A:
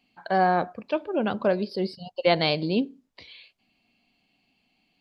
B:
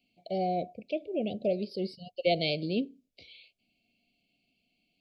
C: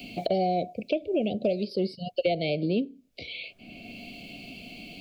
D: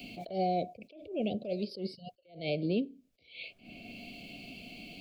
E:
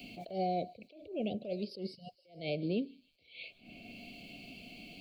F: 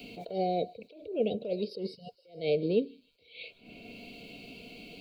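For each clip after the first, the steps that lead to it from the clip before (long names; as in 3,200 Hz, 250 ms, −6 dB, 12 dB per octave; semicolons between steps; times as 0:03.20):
Chebyshev band-stop filter 710–2,200 Hz, order 5; level −5 dB
multiband upward and downward compressor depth 100%; level +4 dB
level that may rise only so fast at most 140 dB per second; level −4 dB
delay with a high-pass on its return 154 ms, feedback 58%, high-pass 3,700 Hz, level −16 dB; level −3 dB
hollow resonant body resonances 460/970/1,400/3,800 Hz, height 14 dB, ringing for 50 ms; level +1.5 dB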